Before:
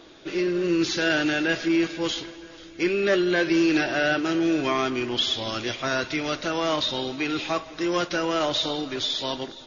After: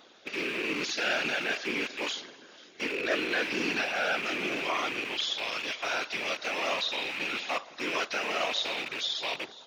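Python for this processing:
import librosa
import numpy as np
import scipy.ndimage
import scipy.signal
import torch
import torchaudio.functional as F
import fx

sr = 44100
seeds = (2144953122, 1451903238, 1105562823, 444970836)

y = fx.rattle_buzz(x, sr, strikes_db=-39.0, level_db=-17.0)
y = scipy.signal.sosfilt(scipy.signal.butter(2, 520.0, 'highpass', fs=sr, output='sos'), y)
y = fx.whisperise(y, sr, seeds[0])
y = F.gain(torch.from_numpy(y), -5.0).numpy()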